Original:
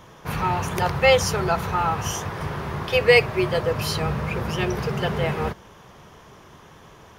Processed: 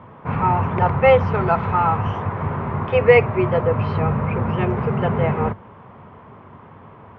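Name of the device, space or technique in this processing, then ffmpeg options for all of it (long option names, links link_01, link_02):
bass cabinet: -filter_complex "[0:a]highpass=80,equalizer=frequency=100:width_type=q:width=4:gain=8,equalizer=frequency=240:width_type=q:width=4:gain=6,equalizer=frequency=340:width_type=q:width=4:gain=-3,equalizer=frequency=980:width_type=q:width=4:gain=3,equalizer=frequency=1700:width_type=q:width=4:gain=-6,lowpass=frequency=2100:width=0.5412,lowpass=frequency=2100:width=1.3066,asettb=1/sr,asplit=3[link_01][link_02][link_03];[link_01]atrim=end=1.344[link_04];[link_02]atrim=start=1.34:end=1.97,asetpts=PTS-STARTPTS,afade=type=in:duration=0.004:curve=qsin,afade=type=out:start_time=0.626:duration=0.004:curve=qsin,aemphasis=mode=production:type=75fm[link_05];[link_03]atrim=start=1.966[link_06];[link_04][link_05]acrossfade=duration=0.004:curve1=hsin:curve2=qsin[link_07];[link_07][link_06]acrossfade=duration=0.004:curve1=qsin:curve2=hsin,volume=4dB"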